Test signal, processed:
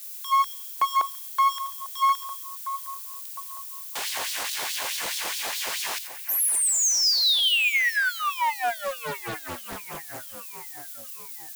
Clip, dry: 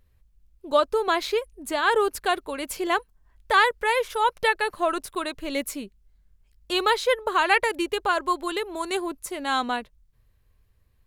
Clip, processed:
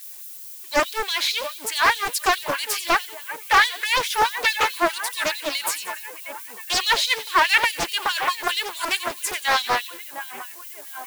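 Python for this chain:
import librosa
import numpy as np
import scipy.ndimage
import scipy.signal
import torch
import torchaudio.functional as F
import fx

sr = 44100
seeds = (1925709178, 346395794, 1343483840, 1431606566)

p1 = fx.power_curve(x, sr, exponent=0.7)
p2 = fx.notch(p1, sr, hz=1300.0, q=5.8)
p3 = p2 + fx.echo_split(p2, sr, split_hz=2500.0, low_ms=709, high_ms=89, feedback_pct=52, wet_db=-11.5, dry=0)
p4 = fx.filter_lfo_highpass(p3, sr, shape='sine', hz=4.7, low_hz=610.0, high_hz=4000.0, q=1.4)
p5 = fx.peak_eq(p4, sr, hz=470.0, db=-4.5, octaves=1.8)
p6 = 10.0 ** (-17.5 / 20.0) * np.tanh(p5 / 10.0 ** (-17.5 / 20.0))
p7 = p5 + F.gain(torch.from_numpy(p6), -7.5).numpy()
p8 = fx.low_shelf(p7, sr, hz=150.0, db=8.5)
p9 = fx.dmg_noise_colour(p8, sr, seeds[0], colour='violet', level_db=-38.0)
y = fx.doppler_dist(p9, sr, depth_ms=0.85)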